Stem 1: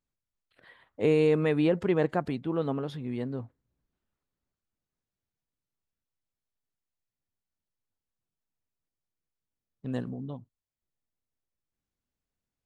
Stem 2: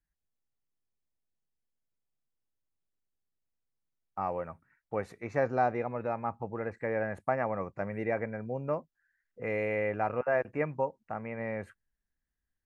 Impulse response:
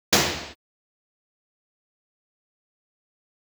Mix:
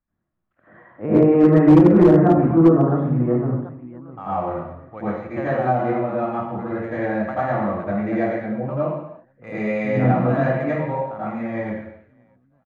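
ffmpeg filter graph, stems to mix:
-filter_complex "[0:a]lowpass=f=1.6k:w=0.5412,lowpass=f=1.6k:w=1.3066,volume=1dB,asplit=3[a][b][c];[b]volume=-13.5dB[d];[c]volume=-6dB[e];[1:a]adynamicsmooth=sensitivity=5.5:basefreq=2.9k,volume=-3dB,asplit=3[f][g][h];[g]volume=-13.5dB[i];[h]volume=-22.5dB[j];[2:a]atrim=start_sample=2205[k];[d][i]amix=inputs=2:normalize=0[l];[l][k]afir=irnorm=-1:irlink=0[m];[e][j]amix=inputs=2:normalize=0,aecho=0:1:745|1490|2235|2980|3725:1|0.34|0.116|0.0393|0.0134[n];[a][f][m][n]amix=inputs=4:normalize=0,superequalizer=7b=0.447:10b=1.41:14b=0.355:15b=0.631,acrossover=split=440[o][p];[p]acompressor=threshold=-18dB:ratio=10[q];[o][q]amix=inputs=2:normalize=0,volume=6dB,asoftclip=hard,volume=-6dB"

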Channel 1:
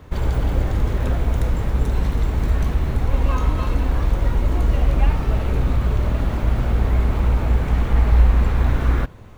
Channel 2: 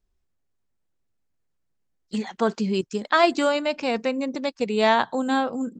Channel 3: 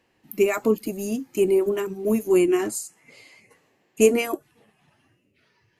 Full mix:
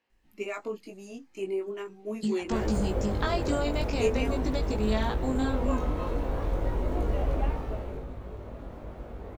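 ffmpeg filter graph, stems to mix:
-filter_complex "[0:a]equalizer=f=500:w=0.66:g=11,adelay=2400,volume=-9dB,afade=t=out:st=7.31:d=0.75:silence=0.281838[a];[1:a]bass=f=250:g=10,treble=f=4k:g=7,acompressor=threshold=-27dB:ratio=5,adelay=100,volume=0.5dB[b];[2:a]lowpass=5.2k,lowshelf=f=370:g=-9.5,volume=-6dB[c];[a][b][c]amix=inputs=3:normalize=0,bandreject=f=57.85:t=h:w=4,bandreject=f=115.7:t=h:w=4,bandreject=f=173.55:t=h:w=4,flanger=delay=18.5:depth=2.5:speed=0.4"

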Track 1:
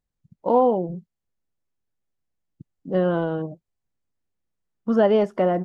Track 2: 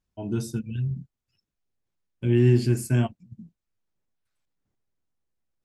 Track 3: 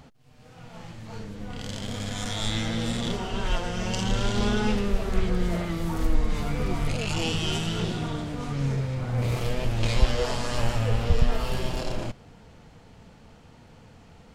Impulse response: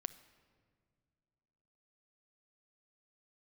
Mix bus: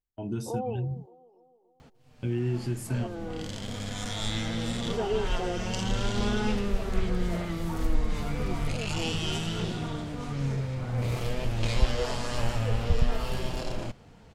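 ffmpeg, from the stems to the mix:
-filter_complex "[0:a]lowshelf=f=470:g=5,aecho=1:1:2.5:1,volume=-19dB,asplit=3[a][b][c];[b]volume=-13dB[d];[c]volume=-20.5dB[e];[1:a]agate=range=-19dB:threshold=-45dB:ratio=16:detection=peak,acompressor=threshold=-27dB:ratio=2.5,volume=-2dB,asplit=2[f][g];[2:a]adelay=1800,volume=-3dB[h];[g]apad=whole_len=249024[i];[a][i]sidechaincompress=threshold=-34dB:ratio=8:attack=31:release=469[j];[3:a]atrim=start_sample=2205[k];[d][k]afir=irnorm=-1:irlink=0[l];[e]aecho=0:1:286|572|858|1144|1430|1716|2002|2288:1|0.52|0.27|0.141|0.0731|0.038|0.0198|0.0103[m];[j][f][h][l][m]amix=inputs=5:normalize=0"

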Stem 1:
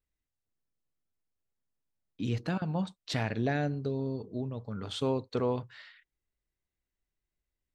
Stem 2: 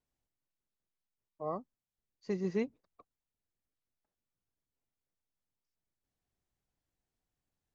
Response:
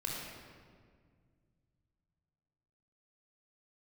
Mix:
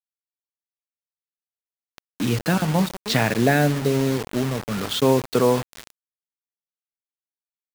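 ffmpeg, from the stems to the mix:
-filter_complex "[0:a]dynaudnorm=f=210:g=17:m=12dB,highpass=f=120:w=0.5412,highpass=f=120:w=1.3066,equalizer=f=1.5k:t=o:w=1.3:g=2,volume=0dB,asplit=2[a][b];[b]volume=-23dB[c];[1:a]acrossover=split=450[d][e];[e]acompressor=threshold=-33dB:ratio=6[f];[d][f]amix=inputs=2:normalize=0,highpass=f=170:p=1,lowshelf=f=330:g=10.5,adelay=500,volume=-6.5dB[g];[2:a]atrim=start_sample=2205[h];[c][h]afir=irnorm=-1:irlink=0[i];[a][g][i]amix=inputs=3:normalize=0,acrusher=bits=4:mix=0:aa=0.000001"

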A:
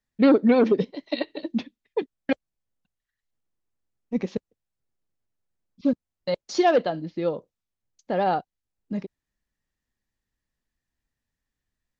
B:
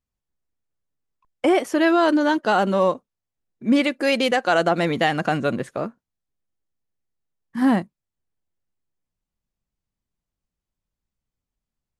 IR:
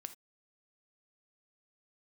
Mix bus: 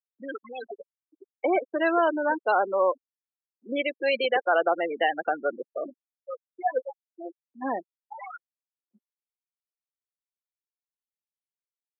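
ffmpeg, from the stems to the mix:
-filter_complex "[0:a]lowpass=f=2.3k:w=0.5412,lowpass=f=2.3k:w=1.3066,acrusher=bits=3:mix=0:aa=0.000001,aphaser=in_gain=1:out_gain=1:delay=4.4:decay=0.78:speed=0.23:type=triangular,volume=-13dB[a];[1:a]volume=-3dB[b];[a][b]amix=inputs=2:normalize=0,afftfilt=real='re*gte(hypot(re,im),0.112)':imag='im*gte(hypot(re,im),0.112)':win_size=1024:overlap=0.75,highpass=f=390:w=0.5412,highpass=f=390:w=1.3066"

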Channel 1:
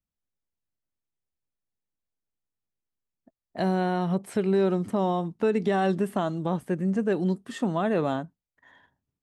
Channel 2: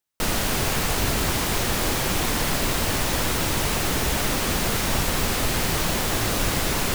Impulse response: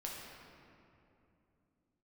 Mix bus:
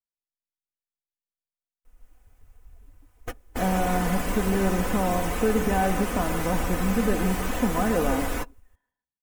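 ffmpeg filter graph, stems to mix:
-filter_complex "[0:a]volume=-1dB,asplit=3[a][b][c];[b]volume=-10dB[d];[1:a]equalizer=f=170:w=2.5:g=-13,adelay=1650,volume=-3.5dB,asplit=2[e][f];[f]volume=-23dB[g];[c]apad=whole_len=379187[h];[e][h]sidechaingate=range=-22dB:threshold=-57dB:ratio=16:detection=peak[i];[d][g]amix=inputs=2:normalize=0,aecho=0:1:154|308|462:1|0.15|0.0225[j];[a][i][j]amix=inputs=3:normalize=0,afftdn=nr=21:nf=-37,equalizer=f=4.2k:t=o:w=1.1:g=-11.5,aecho=1:1:4:0.53"

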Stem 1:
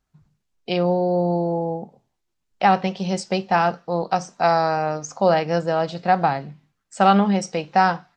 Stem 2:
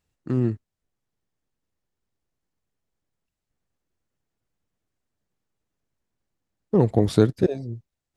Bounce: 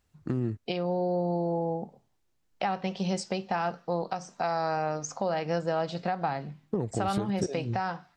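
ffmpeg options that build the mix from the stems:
-filter_complex "[0:a]acompressor=threshold=-23dB:ratio=3,volume=-2.5dB[a];[1:a]acompressor=threshold=-26dB:ratio=10,volume=2dB[b];[a][b]amix=inputs=2:normalize=0,alimiter=limit=-17dB:level=0:latency=1:release=228"

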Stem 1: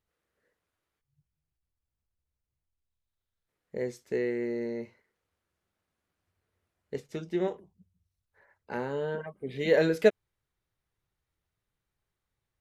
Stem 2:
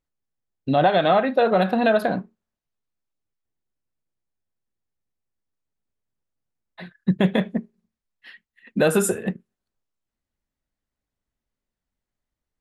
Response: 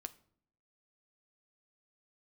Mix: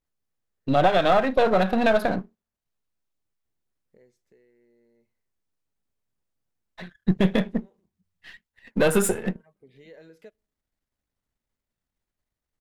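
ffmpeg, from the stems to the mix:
-filter_complex "[0:a]acompressor=threshold=-42dB:ratio=2.5,adelay=200,volume=-4dB,afade=t=out:st=3.78:d=0.69:silence=0.398107,afade=t=in:st=6.86:d=0.2:silence=0.266073,asplit=2[a][b];[b]volume=-13.5dB[c];[1:a]aeval=exprs='if(lt(val(0),0),0.447*val(0),val(0))':c=same,volume=1.5dB,asplit=2[d][e];[e]apad=whole_len=564727[f];[a][f]sidechaincompress=threshold=-33dB:ratio=8:attack=33:release=304[g];[2:a]atrim=start_sample=2205[h];[c][h]afir=irnorm=-1:irlink=0[i];[g][d][i]amix=inputs=3:normalize=0"

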